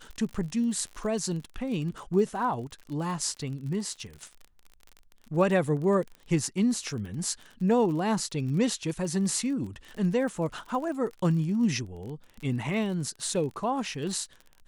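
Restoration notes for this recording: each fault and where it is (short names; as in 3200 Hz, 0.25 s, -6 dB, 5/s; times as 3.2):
crackle 40/s -36 dBFS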